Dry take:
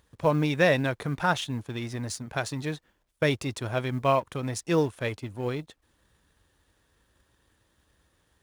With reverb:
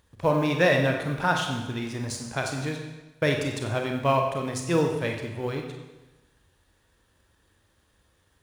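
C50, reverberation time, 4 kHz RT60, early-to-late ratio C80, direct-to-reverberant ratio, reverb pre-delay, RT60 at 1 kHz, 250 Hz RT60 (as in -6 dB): 5.0 dB, 1.1 s, 1.0 s, 6.5 dB, 2.0 dB, 31 ms, 1.1 s, 1.1 s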